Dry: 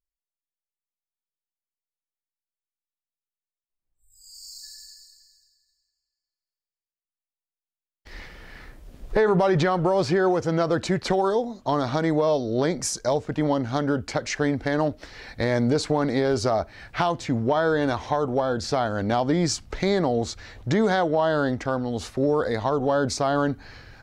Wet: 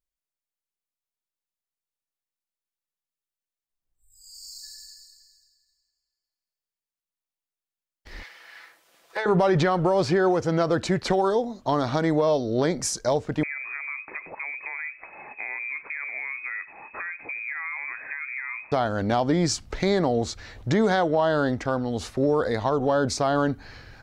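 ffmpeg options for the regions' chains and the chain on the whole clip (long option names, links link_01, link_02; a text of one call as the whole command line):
ffmpeg -i in.wav -filter_complex "[0:a]asettb=1/sr,asplit=3[link_01][link_02][link_03];[link_01]atrim=end=8.234[link_04];[link_02]atrim=start=8.23:end=9.26,asetpts=PTS-STARTPTS,afade=type=in:duration=0.004:curve=qsin,afade=type=out:start_time=1.026:duration=0.004:curve=qsin,highpass=920,aecho=1:1:6:0.49,atrim=end_sample=45423[link_05];[link_03]atrim=start=9.256[link_06];[link_04][link_05]acrossfade=duration=0.004:curve1=hsin:curve2=qsin[link_07];[link_07][link_06]acrossfade=duration=0.004:curve1=qsin:curve2=hsin,asettb=1/sr,asplit=3[link_08][link_09][link_10];[link_08]atrim=end=13.434[link_11];[link_09]atrim=start=13.43:end=18.72,asetpts=PTS-STARTPTS,afade=type=in:duration=0.004:curve=qsin,afade=type=out:start_time=5.286:duration=0.004:curve=qsin,acompressor=threshold=-33dB:ratio=3:attack=3.2:release=140:knee=1:detection=peak,aecho=1:1:102:0.0944,atrim=end_sample=233289,lowpass=frequency=2200:width_type=q:width=0.5098,lowpass=frequency=2200:width_type=q:width=0.6013,lowpass=frequency=2200:width_type=q:width=0.9,lowpass=frequency=2200:width_type=q:width=2.563,afreqshift=-2600[link_12];[link_10]atrim=start=18.716[link_13];[link_11][link_12]acrossfade=duration=0.004:curve1=hsin:curve2=qsin[link_14];[link_14][link_13]acrossfade=duration=0.004:curve1=qsin:curve2=hsin" out.wav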